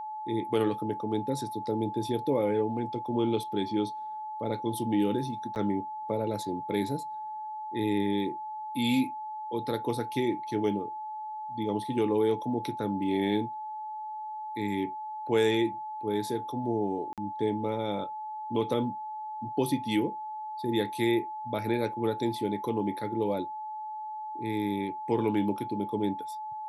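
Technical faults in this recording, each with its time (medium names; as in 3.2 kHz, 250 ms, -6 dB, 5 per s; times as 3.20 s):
whine 860 Hz -35 dBFS
5.55–5.56 s: dropout 9.1 ms
17.13–17.18 s: dropout 47 ms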